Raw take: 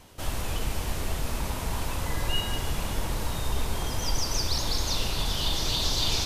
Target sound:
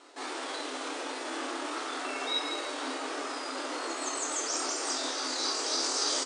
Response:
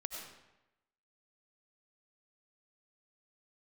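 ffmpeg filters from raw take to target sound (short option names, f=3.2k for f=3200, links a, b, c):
-filter_complex "[0:a]bandreject=f=392.1:t=h:w=4,bandreject=f=784.2:t=h:w=4,bandreject=f=1.1763k:t=h:w=4,bandreject=f=1.5684k:t=h:w=4,bandreject=f=1.9605k:t=h:w=4,bandreject=f=2.3526k:t=h:w=4,bandreject=f=2.7447k:t=h:w=4,bandreject=f=3.1368k:t=h:w=4,bandreject=f=3.5289k:t=h:w=4,bandreject=f=3.921k:t=h:w=4,asetrate=58866,aresample=44100,atempo=0.749154,highshelf=f=6.9k:g=-8.5,areverse,acompressor=mode=upward:threshold=-47dB:ratio=2.5,areverse,afftfilt=real='re*between(b*sr/4096,250,9800)':imag='im*between(b*sr/4096,250,9800)':win_size=4096:overlap=0.75,asplit=2[a][b];[b]aecho=0:1:27|57:0.501|0.473[c];[a][c]amix=inputs=2:normalize=0"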